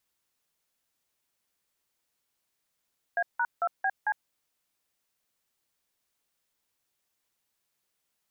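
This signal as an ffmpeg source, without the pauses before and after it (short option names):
-f lavfi -i "aevalsrc='0.0473*clip(min(mod(t,0.224),0.056-mod(t,0.224))/0.002,0,1)*(eq(floor(t/0.224),0)*(sin(2*PI*697*mod(t,0.224))+sin(2*PI*1633*mod(t,0.224)))+eq(floor(t/0.224),1)*(sin(2*PI*941*mod(t,0.224))+sin(2*PI*1477*mod(t,0.224)))+eq(floor(t/0.224),2)*(sin(2*PI*697*mod(t,0.224))+sin(2*PI*1336*mod(t,0.224)))+eq(floor(t/0.224),3)*(sin(2*PI*770*mod(t,0.224))+sin(2*PI*1633*mod(t,0.224)))+eq(floor(t/0.224),4)*(sin(2*PI*852*mod(t,0.224))+sin(2*PI*1633*mod(t,0.224))))':d=1.12:s=44100"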